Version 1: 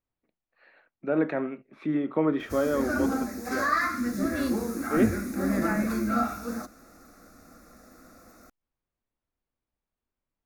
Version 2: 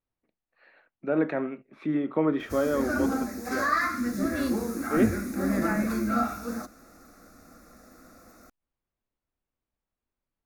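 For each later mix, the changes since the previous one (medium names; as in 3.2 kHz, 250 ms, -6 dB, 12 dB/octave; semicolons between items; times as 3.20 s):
no change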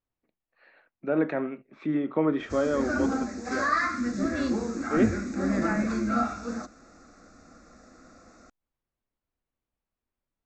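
master: add brick-wall FIR low-pass 8.1 kHz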